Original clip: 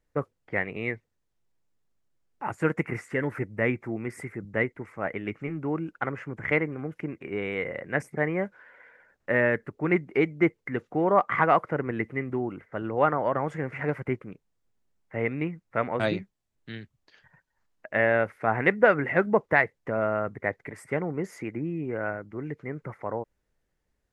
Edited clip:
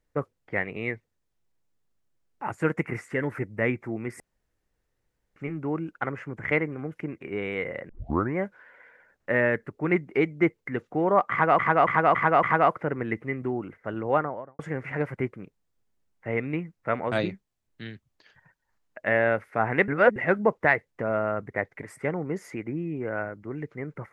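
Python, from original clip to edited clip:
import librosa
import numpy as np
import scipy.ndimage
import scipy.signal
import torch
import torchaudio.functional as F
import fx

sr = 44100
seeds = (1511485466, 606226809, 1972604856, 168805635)

y = fx.studio_fade_out(x, sr, start_s=12.94, length_s=0.53)
y = fx.edit(y, sr, fx.room_tone_fill(start_s=4.2, length_s=1.16),
    fx.tape_start(start_s=7.89, length_s=0.48),
    fx.repeat(start_s=11.31, length_s=0.28, count=5),
    fx.reverse_span(start_s=18.76, length_s=0.28), tone=tone)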